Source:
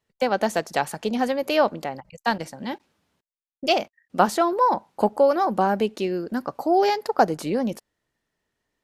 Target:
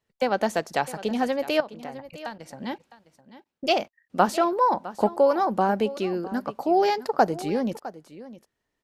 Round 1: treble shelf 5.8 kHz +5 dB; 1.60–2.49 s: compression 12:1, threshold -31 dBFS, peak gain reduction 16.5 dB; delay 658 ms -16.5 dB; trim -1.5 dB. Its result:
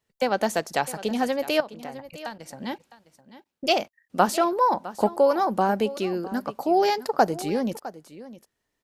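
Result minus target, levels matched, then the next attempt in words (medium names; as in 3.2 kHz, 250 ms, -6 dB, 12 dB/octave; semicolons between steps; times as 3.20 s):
8 kHz band +5.0 dB
treble shelf 5.8 kHz -3 dB; 1.60–2.49 s: compression 12:1, threshold -31 dBFS, peak gain reduction 16.5 dB; delay 658 ms -16.5 dB; trim -1.5 dB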